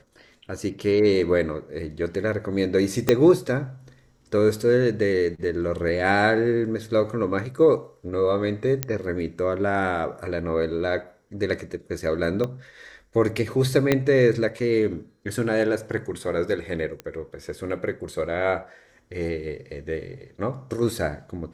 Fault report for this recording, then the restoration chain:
3.09 pop -4 dBFS
8.83 pop -7 dBFS
12.44 pop -16 dBFS
13.92 pop -6 dBFS
17 pop -20 dBFS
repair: de-click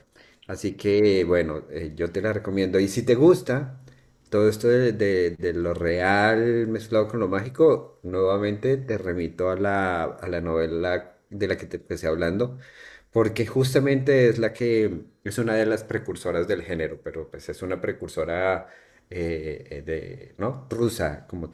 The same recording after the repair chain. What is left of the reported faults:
3.09 pop
12.44 pop
13.92 pop

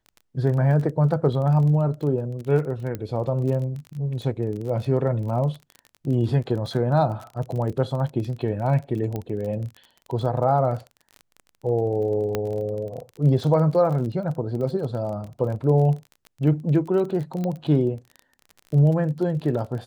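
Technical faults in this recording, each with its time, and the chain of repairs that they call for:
crackle 28/s -31 dBFS
2.95 pop -17 dBFS
9.16 pop -17 dBFS
12.35 pop -11 dBFS
17.44 pop -17 dBFS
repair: de-click

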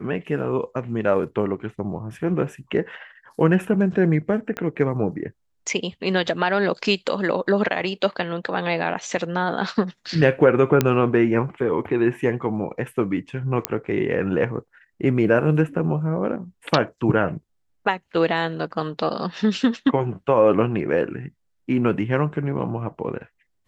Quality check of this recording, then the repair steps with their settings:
4.57 pop -14 dBFS
10.81 pop -4 dBFS
13.65 pop -3 dBFS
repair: de-click

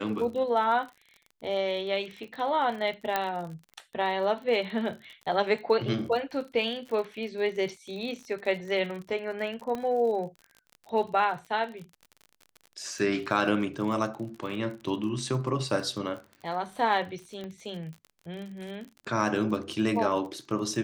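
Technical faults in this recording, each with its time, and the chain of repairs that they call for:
crackle 43/s -37 dBFS
3.16 pop -12 dBFS
9.75 pop -21 dBFS
17.44 pop -26 dBFS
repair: de-click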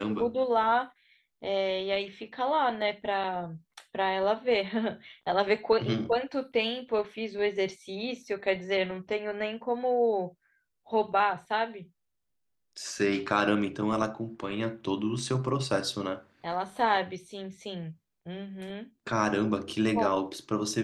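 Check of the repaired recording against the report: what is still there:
9.75 pop
17.44 pop

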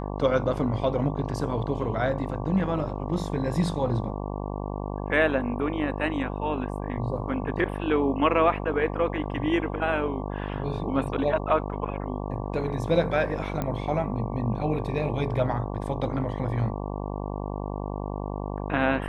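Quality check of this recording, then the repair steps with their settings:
buzz 50 Hz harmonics 23 -32 dBFS
13.62 pop -16 dBFS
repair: de-click; de-hum 50 Hz, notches 23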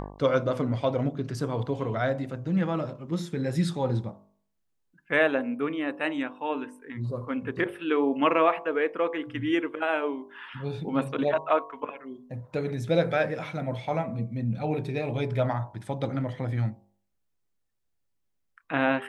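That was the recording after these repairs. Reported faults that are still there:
none

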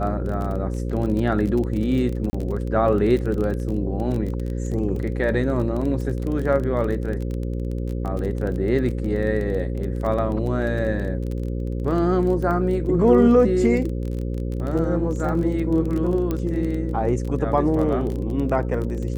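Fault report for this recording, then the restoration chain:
buzz 60 Hz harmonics 9 -26 dBFS
crackle 21/s -27 dBFS
2.3–2.33 gap 30 ms
16.31 pop -13 dBFS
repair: de-click; de-hum 60 Hz, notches 9; interpolate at 2.3, 30 ms

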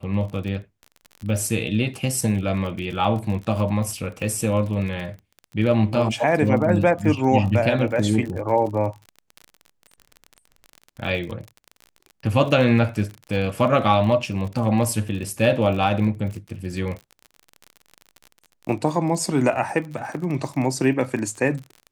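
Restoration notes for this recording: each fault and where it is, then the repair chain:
crackle 37/s -30 dBFS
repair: de-click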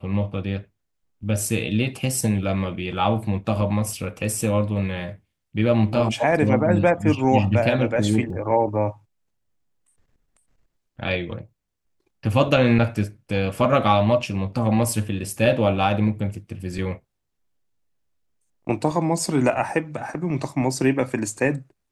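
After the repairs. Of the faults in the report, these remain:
none

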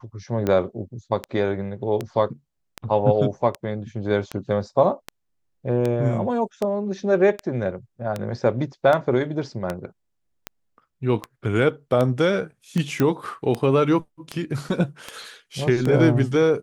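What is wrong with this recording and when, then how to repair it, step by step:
tick 78 rpm -12 dBFS
13 pop -9 dBFS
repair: de-click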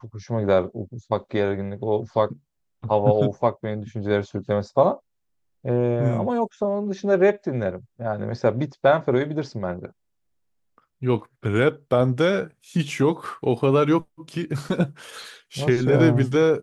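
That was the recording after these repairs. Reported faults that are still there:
none

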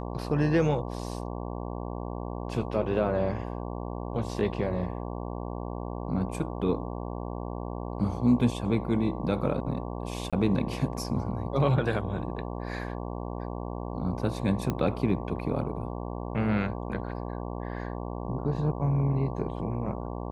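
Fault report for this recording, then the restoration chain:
buzz 60 Hz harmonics 19 -35 dBFS
10.3–10.33 gap 26 ms
14.7 pop -16 dBFS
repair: de-click; de-hum 60 Hz, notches 19; interpolate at 10.3, 26 ms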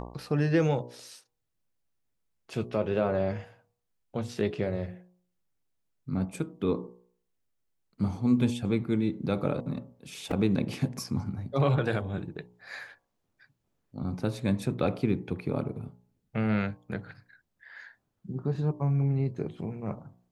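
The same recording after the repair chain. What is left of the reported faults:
none

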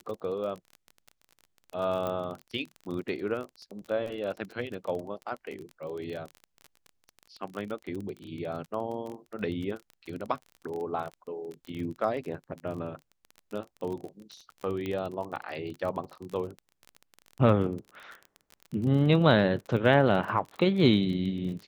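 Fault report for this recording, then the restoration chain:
crackle 29/s -35 dBFS
2.07 pop -20 dBFS
14.86 pop -22 dBFS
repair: de-click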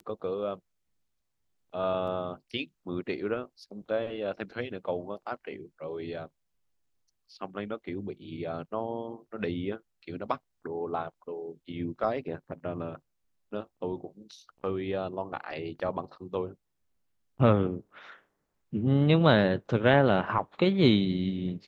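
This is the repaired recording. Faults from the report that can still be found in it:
2.07 pop

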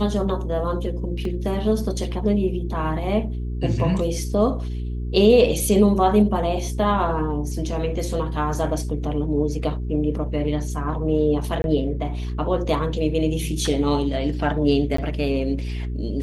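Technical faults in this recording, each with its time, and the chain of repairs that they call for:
hum 60 Hz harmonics 7 -27 dBFS
1.25 gap 2.5 ms
11.62–11.64 gap 21 ms
14.97–14.98 gap 14 ms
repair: de-hum 60 Hz, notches 7; interpolate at 1.25, 2.5 ms; interpolate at 11.62, 21 ms; interpolate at 14.97, 14 ms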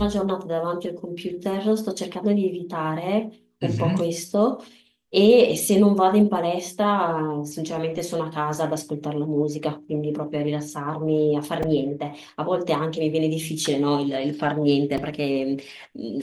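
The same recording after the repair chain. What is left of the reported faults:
none

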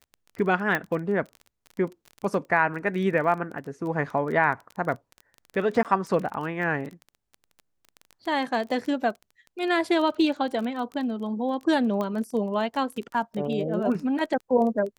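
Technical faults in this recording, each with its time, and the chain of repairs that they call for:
crackle 21/s -32 dBFS
0.75 pop -12 dBFS
5.83–5.85 gap 18 ms
12.01 pop -18 dBFS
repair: de-click; interpolate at 5.83, 18 ms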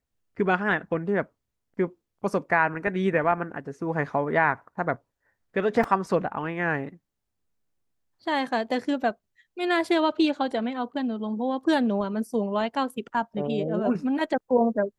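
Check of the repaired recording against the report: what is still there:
none

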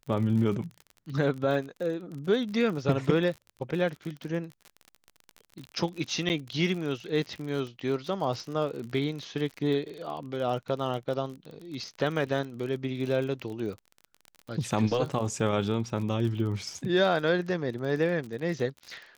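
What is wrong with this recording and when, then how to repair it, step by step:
crackle 43/s -35 dBFS
6.29–6.3 gap 8.8 ms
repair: de-click; interpolate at 6.29, 8.8 ms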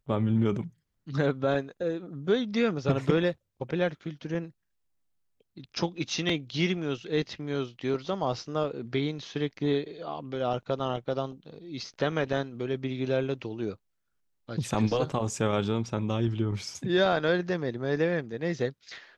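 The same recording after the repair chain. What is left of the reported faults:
none

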